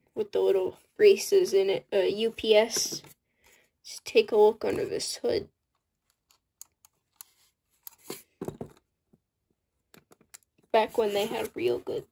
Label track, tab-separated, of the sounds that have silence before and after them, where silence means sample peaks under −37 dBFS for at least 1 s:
6.610000	8.650000	sound